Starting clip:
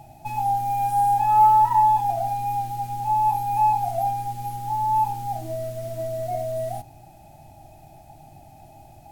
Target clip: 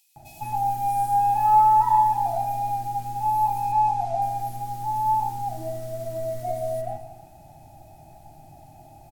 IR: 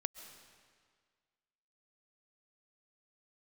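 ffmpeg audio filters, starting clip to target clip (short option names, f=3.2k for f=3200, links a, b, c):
-filter_complex "[0:a]asettb=1/sr,asplit=3[a][b][c];[a]atrim=end=3.724[d];[b]atrim=start=3.72:end=4.22,asetpts=PTS-STARTPTS,afade=t=in:d=0.004:c=qsin,afade=t=out:st=0.496:d=0.004:c=qsin,lowpass=6.8k[e];[c]atrim=start=4.216[f];[d][e]acrossfade=d=0.004:c1=hsin:c2=qsin[g];[g][f]acrossfade=d=0.004:c1=qsin:c2=hsin,acrossover=split=2800[h][i];[h]adelay=160[j];[j][i]amix=inputs=2:normalize=0[k];[1:a]atrim=start_sample=2205,asetrate=66150,aresample=44100[l];[k][l]afir=irnorm=-1:irlink=0,volume=4dB"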